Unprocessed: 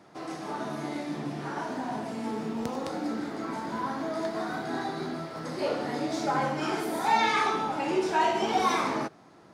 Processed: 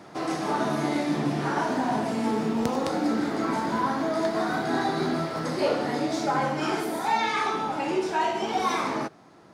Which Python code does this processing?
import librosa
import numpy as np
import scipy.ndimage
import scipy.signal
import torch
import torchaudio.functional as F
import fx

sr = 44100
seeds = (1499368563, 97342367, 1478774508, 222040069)

y = fx.rider(x, sr, range_db=5, speed_s=0.5)
y = y * librosa.db_to_amplitude(3.5)